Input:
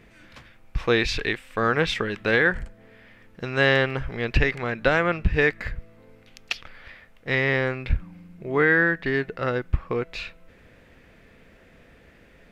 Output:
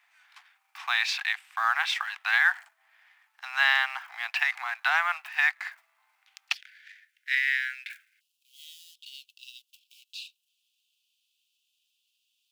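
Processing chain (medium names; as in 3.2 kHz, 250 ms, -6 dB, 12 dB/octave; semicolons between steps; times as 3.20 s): companding laws mixed up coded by A; steep high-pass 740 Hz 96 dB/octave, from 6.54 s 1.5 kHz, from 8.19 s 2.8 kHz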